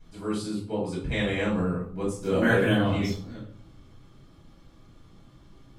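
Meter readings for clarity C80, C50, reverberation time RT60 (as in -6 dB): 9.5 dB, 4.5 dB, 0.45 s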